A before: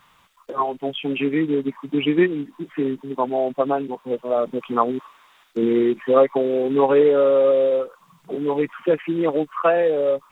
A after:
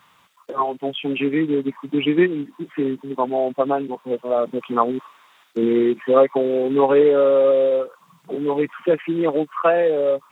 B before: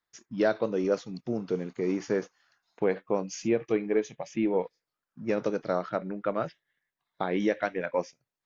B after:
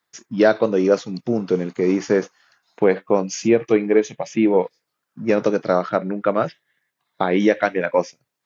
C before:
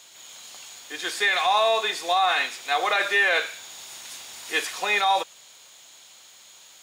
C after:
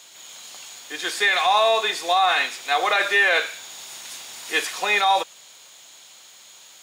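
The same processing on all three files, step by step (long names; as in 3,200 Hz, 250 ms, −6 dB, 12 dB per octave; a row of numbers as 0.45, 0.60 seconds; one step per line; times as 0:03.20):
high-pass filter 99 Hz 12 dB per octave
loudness normalisation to −20 LKFS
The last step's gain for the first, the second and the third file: +1.0, +10.0, +2.5 decibels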